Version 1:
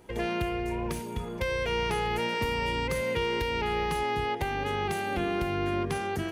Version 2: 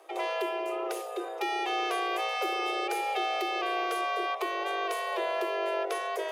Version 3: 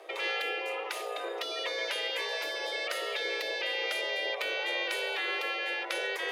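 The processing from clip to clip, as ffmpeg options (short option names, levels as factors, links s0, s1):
-af "areverse,acompressor=mode=upward:threshold=0.0251:ratio=2.5,areverse,afreqshift=300,volume=0.841"
-af "afftfilt=real='re*lt(hypot(re,im),0.0708)':imag='im*lt(hypot(re,im),0.0708)':win_size=1024:overlap=0.75,equalizer=f=500:t=o:w=1:g=11,equalizer=f=2000:t=o:w=1:g=9,equalizer=f=4000:t=o:w=1:g=8,volume=0.75"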